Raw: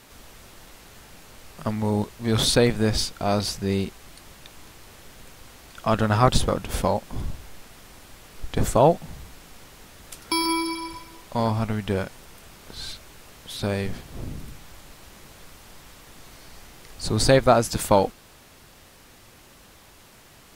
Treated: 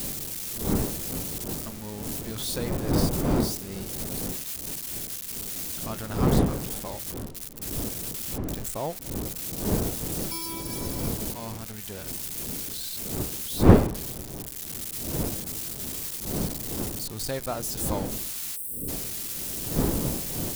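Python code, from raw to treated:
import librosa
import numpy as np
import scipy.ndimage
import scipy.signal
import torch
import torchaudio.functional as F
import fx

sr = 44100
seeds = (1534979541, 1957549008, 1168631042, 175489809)

y = x + 0.5 * 10.0 ** (-11.5 / 20.0) * np.diff(np.sign(x), prepend=np.sign(x[:1]))
y = fx.dmg_wind(y, sr, seeds[0], corner_hz=310.0, level_db=-15.0)
y = fx.spec_box(y, sr, start_s=18.56, length_s=0.32, low_hz=580.0, high_hz=7800.0, gain_db=-24)
y = y * librosa.db_to_amplitude(-15.0)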